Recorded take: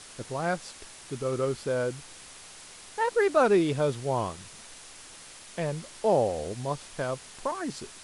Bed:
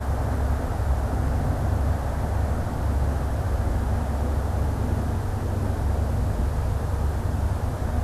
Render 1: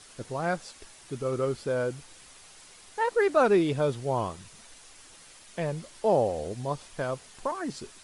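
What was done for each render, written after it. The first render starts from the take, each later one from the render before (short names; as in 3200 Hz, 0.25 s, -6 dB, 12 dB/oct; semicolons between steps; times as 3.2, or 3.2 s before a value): denoiser 6 dB, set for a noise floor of -48 dBFS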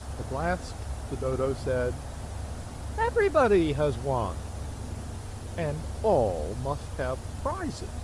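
add bed -12 dB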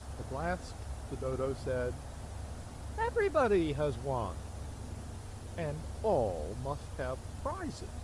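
gain -6.5 dB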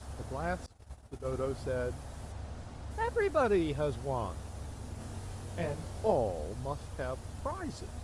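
0.66–1.25 expander -34 dBFS; 2.32–2.91 air absorption 53 m; 4.98–6.12 doubler 23 ms -2 dB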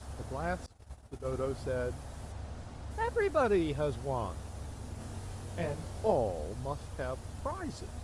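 nothing audible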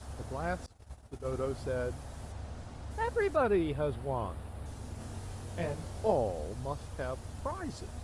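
3.36–4.66 bell 6200 Hz -14 dB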